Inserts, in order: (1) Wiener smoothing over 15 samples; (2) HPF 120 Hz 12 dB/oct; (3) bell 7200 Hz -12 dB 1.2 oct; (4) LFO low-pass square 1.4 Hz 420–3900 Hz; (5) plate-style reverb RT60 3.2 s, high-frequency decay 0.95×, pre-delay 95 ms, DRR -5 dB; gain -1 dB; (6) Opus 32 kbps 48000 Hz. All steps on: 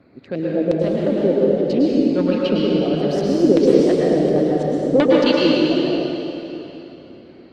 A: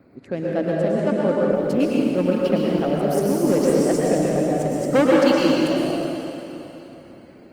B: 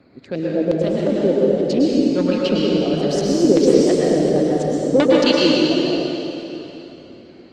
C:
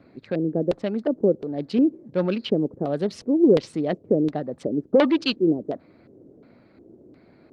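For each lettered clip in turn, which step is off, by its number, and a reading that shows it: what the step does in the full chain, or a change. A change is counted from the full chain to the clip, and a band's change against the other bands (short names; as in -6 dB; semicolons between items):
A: 4, 1 kHz band +4.5 dB; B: 3, 4 kHz band +3.5 dB; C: 5, loudness change -6.0 LU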